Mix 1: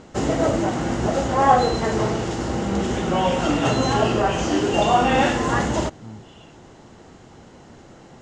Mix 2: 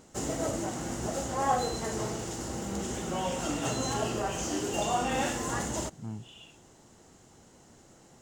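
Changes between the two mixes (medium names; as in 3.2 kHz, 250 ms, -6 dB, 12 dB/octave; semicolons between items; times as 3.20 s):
background -12.0 dB; master: remove low-pass 3.8 kHz 12 dB/octave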